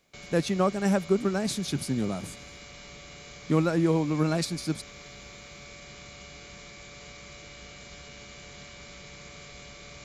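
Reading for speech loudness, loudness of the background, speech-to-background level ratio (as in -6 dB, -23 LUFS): -27.5 LUFS, -44.5 LUFS, 17.0 dB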